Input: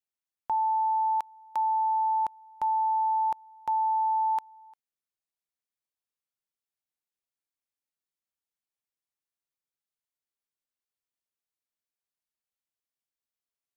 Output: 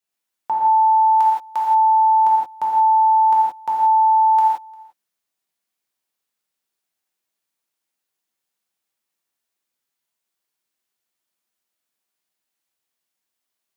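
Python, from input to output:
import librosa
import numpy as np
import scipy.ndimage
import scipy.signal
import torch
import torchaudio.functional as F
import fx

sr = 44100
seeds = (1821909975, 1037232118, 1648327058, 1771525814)

y = fx.highpass(x, sr, hz=200.0, slope=6)
y = fx.rev_gated(y, sr, seeds[0], gate_ms=200, shape='flat', drr_db=-5.5)
y = y * 10.0 ** (5.5 / 20.0)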